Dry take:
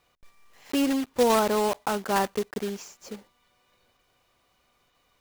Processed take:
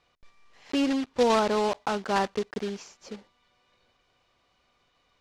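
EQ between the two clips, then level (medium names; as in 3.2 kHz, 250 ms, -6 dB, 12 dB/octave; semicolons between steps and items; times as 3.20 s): Chebyshev low-pass 4.9 kHz, order 2; 0.0 dB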